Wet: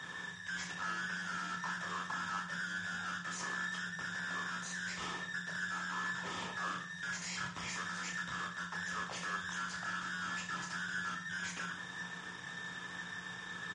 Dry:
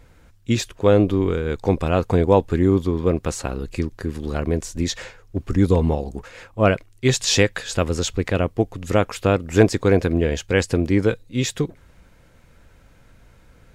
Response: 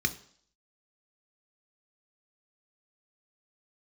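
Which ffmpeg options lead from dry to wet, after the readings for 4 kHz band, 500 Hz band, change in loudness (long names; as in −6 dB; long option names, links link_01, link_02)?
−13.5 dB, −35.0 dB, −18.5 dB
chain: -filter_complex "[0:a]afftfilt=real='real(if(between(b,1,1012),(2*floor((b-1)/92)+1)*92-b,b),0)':imag='imag(if(between(b,1,1012),(2*floor((b-1)/92)+1)*92-b,b),0)*if(between(b,1,1012),-1,1)':win_size=2048:overlap=0.75,adynamicequalizer=threshold=0.0112:dfrequency=450:dqfactor=1.2:tfrequency=450:tqfactor=1.2:attack=5:release=100:ratio=0.375:range=2.5:mode=cutabove:tftype=bell,acrossover=split=190[link_01][link_02];[link_02]acompressor=threshold=-25dB:ratio=3[link_03];[link_01][link_03]amix=inputs=2:normalize=0,alimiter=limit=-20.5dB:level=0:latency=1:release=72,acompressor=threshold=-35dB:ratio=10,aeval=exprs='0.0794*(cos(1*acos(clip(val(0)/0.0794,-1,1)))-cos(1*PI/2))+0.000891*(cos(3*acos(clip(val(0)/0.0794,-1,1)))-cos(3*PI/2))+0.0355*(cos(5*acos(clip(val(0)/0.0794,-1,1)))-cos(5*PI/2))+0.0316*(cos(7*acos(clip(val(0)/0.0794,-1,1)))-cos(7*PI/2))+0.0126*(cos(8*acos(clip(val(0)/0.0794,-1,1)))-cos(8*PI/2))':channel_layout=same,acrusher=bits=9:mix=0:aa=0.000001,aeval=exprs='(tanh(282*val(0)+0.45)-tanh(0.45))/282':channel_layout=same,afreqshift=-180,highpass=130,equalizer=frequency=170:width_type=q:width=4:gain=-6,equalizer=frequency=1000:width_type=q:width=4:gain=9,equalizer=frequency=4200:width_type=q:width=4:gain=-7,lowpass=frequency=7100:width=0.5412,lowpass=frequency=7100:width=1.3066,aecho=1:1:30|63|99.3|139.2|183.2:0.631|0.398|0.251|0.158|0.1,volume=11dB" -ar 44100 -c:a libmp3lame -b:a 48k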